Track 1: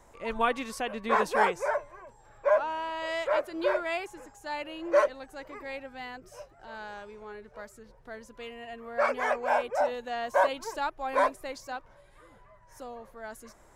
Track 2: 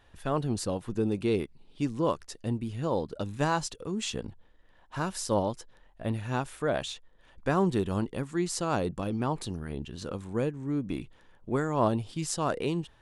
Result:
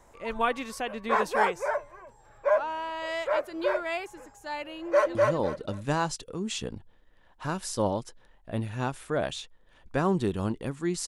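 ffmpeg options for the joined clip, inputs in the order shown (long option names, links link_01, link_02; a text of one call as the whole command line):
ffmpeg -i cue0.wav -i cue1.wav -filter_complex "[0:a]apad=whole_dur=11.07,atrim=end=11.07,atrim=end=5.152[link_01];[1:a]atrim=start=2.668:end=8.59[link_02];[link_01][link_02]acrossfade=duration=0.004:curve1=hsin:curve2=hsin,asplit=2[link_03][link_04];[link_04]afade=type=in:start_time=4.81:duration=0.01,afade=type=out:start_time=5.15:duration=0.01,aecho=0:1:250|500|750|1000:0.891251|0.222813|0.0557032|0.0139258[link_05];[link_03][link_05]amix=inputs=2:normalize=0" out.wav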